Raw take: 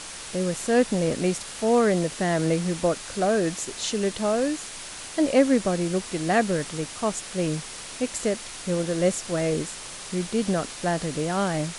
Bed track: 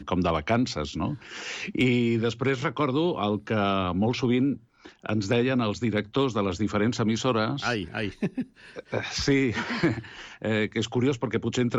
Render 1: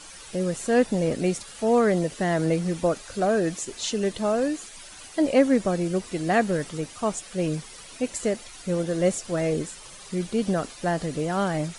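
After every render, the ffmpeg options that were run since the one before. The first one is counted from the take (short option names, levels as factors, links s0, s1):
-af "afftdn=nr=11:nf=-39"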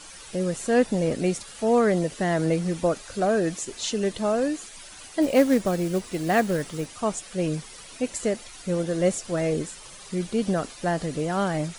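-filter_complex "[0:a]asplit=3[s0][s1][s2];[s0]afade=t=out:st=5.21:d=0.02[s3];[s1]acrusher=bits=5:mode=log:mix=0:aa=0.000001,afade=t=in:st=5.21:d=0.02,afade=t=out:st=6.86:d=0.02[s4];[s2]afade=t=in:st=6.86:d=0.02[s5];[s3][s4][s5]amix=inputs=3:normalize=0"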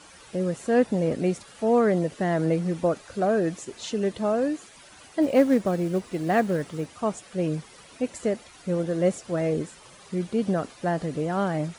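-af "highpass=63,highshelf=f=2800:g=-9.5"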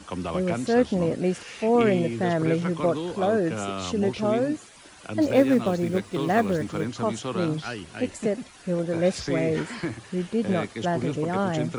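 -filter_complex "[1:a]volume=0.473[s0];[0:a][s0]amix=inputs=2:normalize=0"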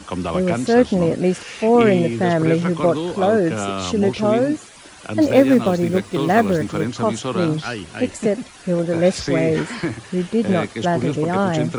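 -af "volume=2.11,alimiter=limit=0.794:level=0:latency=1"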